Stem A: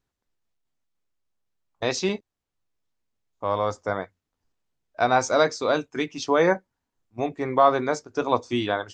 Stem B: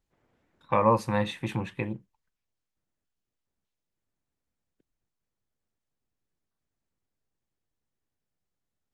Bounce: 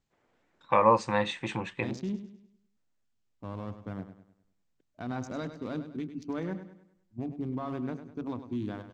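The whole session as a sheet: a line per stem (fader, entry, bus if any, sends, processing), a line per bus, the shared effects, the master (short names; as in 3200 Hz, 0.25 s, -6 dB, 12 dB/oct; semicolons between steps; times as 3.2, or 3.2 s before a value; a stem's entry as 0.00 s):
-14.5 dB, 0.00 s, no send, echo send -11 dB, Wiener smoothing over 25 samples; resonant low shelf 350 Hz +12 dB, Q 1.5; limiter -12 dBFS, peak gain reduction 7.5 dB
+2.0 dB, 0.00 s, no send, no echo send, steep low-pass 8400 Hz 96 dB/oct; low shelf 210 Hz -11.5 dB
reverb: off
echo: feedback echo 0.101 s, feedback 41%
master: dry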